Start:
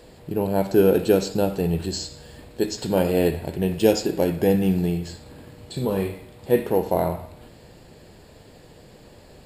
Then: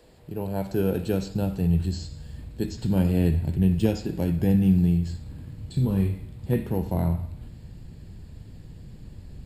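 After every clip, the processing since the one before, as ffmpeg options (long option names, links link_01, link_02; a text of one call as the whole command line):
ffmpeg -i in.wav -filter_complex "[0:a]asubboost=boost=11.5:cutoff=170,acrossover=split=210|4200[link_01][link_02][link_03];[link_03]alimiter=level_in=4dB:limit=-24dB:level=0:latency=1:release=240,volume=-4dB[link_04];[link_01][link_02][link_04]amix=inputs=3:normalize=0,volume=-7.5dB" out.wav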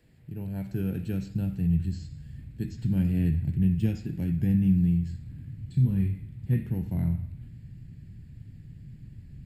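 ffmpeg -i in.wav -af "equalizer=frequency=125:width_type=o:width=1:gain=10,equalizer=frequency=250:width_type=o:width=1:gain=3,equalizer=frequency=500:width_type=o:width=1:gain=-8,equalizer=frequency=1000:width_type=o:width=1:gain=-9,equalizer=frequency=2000:width_type=o:width=1:gain=7,equalizer=frequency=4000:width_type=o:width=1:gain=-5,equalizer=frequency=8000:width_type=o:width=1:gain=-3,volume=-8dB" out.wav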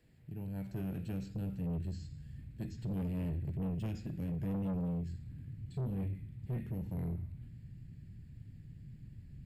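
ffmpeg -i in.wav -af "asoftclip=type=tanh:threshold=-27.5dB,volume=-5.5dB" out.wav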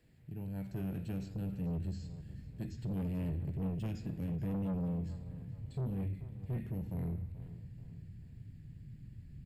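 ffmpeg -i in.wav -filter_complex "[0:a]asplit=2[link_01][link_02];[link_02]adelay=433,lowpass=frequency=4900:poles=1,volume=-15dB,asplit=2[link_03][link_04];[link_04]adelay=433,lowpass=frequency=4900:poles=1,volume=0.43,asplit=2[link_05][link_06];[link_06]adelay=433,lowpass=frequency=4900:poles=1,volume=0.43,asplit=2[link_07][link_08];[link_08]adelay=433,lowpass=frequency=4900:poles=1,volume=0.43[link_09];[link_01][link_03][link_05][link_07][link_09]amix=inputs=5:normalize=0" out.wav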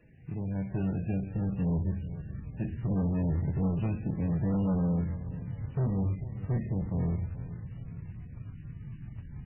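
ffmpeg -i in.wav -af "acrusher=bits=5:mode=log:mix=0:aa=0.000001,volume=8dB" -ar 12000 -c:a libmp3lame -b:a 8k out.mp3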